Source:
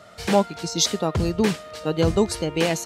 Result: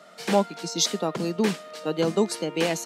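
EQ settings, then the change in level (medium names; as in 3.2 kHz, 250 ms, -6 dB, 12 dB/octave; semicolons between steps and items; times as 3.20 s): steep high-pass 170 Hz 36 dB/octave; -2.5 dB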